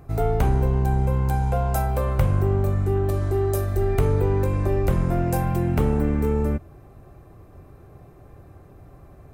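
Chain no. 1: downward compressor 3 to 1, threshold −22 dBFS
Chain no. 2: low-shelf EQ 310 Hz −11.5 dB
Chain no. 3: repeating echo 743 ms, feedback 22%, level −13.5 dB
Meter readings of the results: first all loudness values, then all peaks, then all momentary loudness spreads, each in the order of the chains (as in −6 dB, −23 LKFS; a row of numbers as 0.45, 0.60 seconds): −26.5, −29.5, −22.5 LKFS; −13.0, −12.5, −9.0 dBFS; 1, 2, 8 LU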